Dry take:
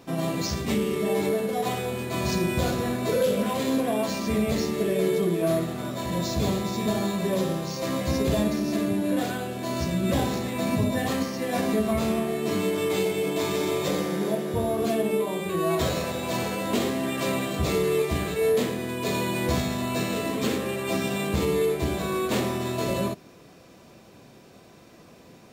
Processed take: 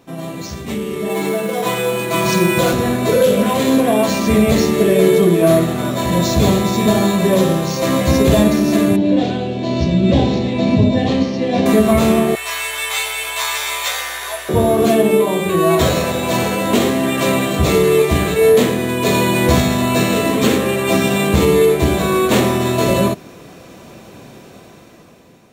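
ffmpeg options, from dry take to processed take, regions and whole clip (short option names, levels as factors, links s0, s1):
-filter_complex "[0:a]asettb=1/sr,asplit=3[s0][s1][s2];[s0]atrim=end=1.094[s3];[s1]atrim=start=1.09:end=2.73,asetpts=PTS-STARTPTS,afade=t=in:d=0.004:c=qsin,afade=t=out:st=1.636:d=0.004:c=qsin,highpass=f=210:p=1,aecho=1:1:6:0.69,atrim=end_sample=72324,acrusher=bits=6:mode=log:mix=0:aa=0.000001[s4];[s2]atrim=start=2.726[s5];[s3][s4]acrossfade=d=0.004:c1=hsin:c2=qsin[s6];[s6][s5]acrossfade=d=0.004:c1=qsin:c2=hsin,asettb=1/sr,asplit=3[s7][s8][s9];[s7]atrim=end=8.964[s10];[s8]atrim=start=8.96:end=11.66,asetpts=PTS-STARTPTS,afade=t=in:d=0.004:c=qsin,afade=t=out:st=2.696:d=0.004:c=qsin,lowpass=f=4800:w=0.5412,lowpass=f=4800:w=1.3066,equalizer=f=1400:t=o:w=1.2:g=-13[s11];[s9]atrim=start=11.656[s12];[s10][s11]acrossfade=d=0.004:c1=hsin:c2=qsin[s13];[s13][s12]acrossfade=d=0.004:c1=qsin:c2=hsin,asettb=1/sr,asplit=3[s14][s15][s16];[s14]atrim=end=12.354[s17];[s15]atrim=start=12.35:end=14.49,asetpts=PTS-STARTPTS,afade=t=in:d=0.004:c=qsin,afade=t=out:st=2.136:d=0.004:c=qsin,highpass=f=950:w=0.5412,highpass=f=950:w=1.3066,aeval=exprs='val(0)+0.000794*(sin(2*PI*60*n/s)+sin(2*PI*2*60*n/s)/2+sin(2*PI*3*60*n/s)/3+sin(2*PI*4*60*n/s)/4+sin(2*PI*5*60*n/s)/5)':c=same,asplit=2[s18][s19];[s19]adelay=14,volume=0.668[s20];[s18][s20]amix=inputs=2:normalize=0,atrim=end_sample=94374[s21];[s16]atrim=start=14.486[s22];[s17][s21]acrossfade=d=0.004:c1=hsin:c2=qsin[s23];[s23][s22]acrossfade=d=0.004:c1=qsin:c2=hsin,equalizer=f=4900:w=5.9:g=-6,dynaudnorm=f=280:g=9:m=5.31"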